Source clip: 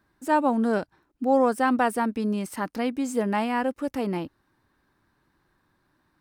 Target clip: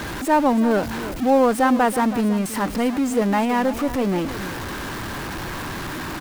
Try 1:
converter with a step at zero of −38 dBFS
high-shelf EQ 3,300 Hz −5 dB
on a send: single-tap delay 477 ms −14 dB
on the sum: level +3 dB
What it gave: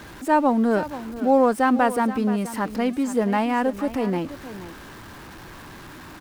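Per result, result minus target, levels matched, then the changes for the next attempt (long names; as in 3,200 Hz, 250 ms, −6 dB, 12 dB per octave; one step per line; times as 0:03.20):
echo 151 ms late; converter with a step at zero: distortion −10 dB
change: single-tap delay 326 ms −14 dB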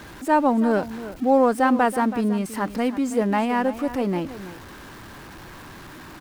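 converter with a step at zero: distortion −10 dB
change: converter with a step at zero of −26 dBFS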